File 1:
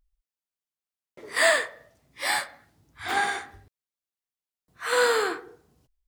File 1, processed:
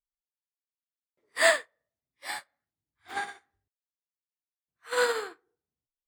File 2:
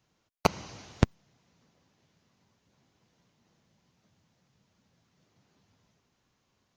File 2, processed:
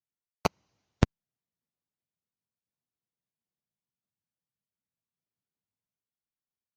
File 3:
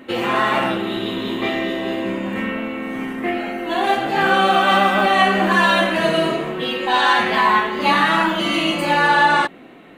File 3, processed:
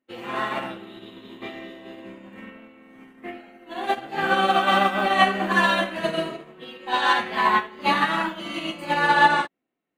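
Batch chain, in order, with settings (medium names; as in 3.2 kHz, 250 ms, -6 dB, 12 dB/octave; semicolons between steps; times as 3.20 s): upward expansion 2.5:1, over -38 dBFS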